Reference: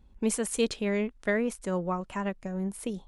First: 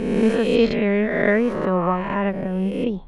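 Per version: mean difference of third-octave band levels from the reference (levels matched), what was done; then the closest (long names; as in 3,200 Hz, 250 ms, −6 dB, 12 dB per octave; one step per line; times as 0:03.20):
7.5 dB: peak hold with a rise ahead of every peak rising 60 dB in 1.45 s
high-frequency loss of the air 350 metres
level +9 dB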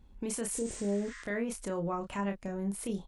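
4.5 dB: healed spectral selection 0:00.56–0:01.20, 1,000–8,800 Hz both
brickwall limiter −27 dBFS, peak gain reduction 11.5 dB
double-tracking delay 30 ms −5.5 dB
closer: second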